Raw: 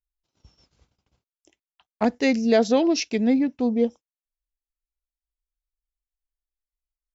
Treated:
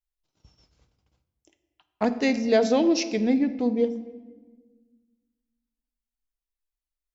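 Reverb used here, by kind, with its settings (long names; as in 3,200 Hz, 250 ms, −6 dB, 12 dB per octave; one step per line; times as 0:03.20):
rectangular room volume 1,100 cubic metres, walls mixed, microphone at 0.53 metres
level −2 dB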